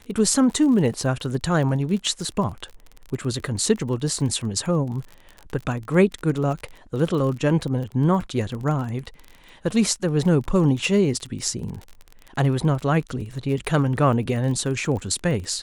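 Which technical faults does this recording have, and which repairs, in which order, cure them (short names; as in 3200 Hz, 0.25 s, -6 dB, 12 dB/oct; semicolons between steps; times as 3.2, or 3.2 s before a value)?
crackle 29/s -30 dBFS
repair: de-click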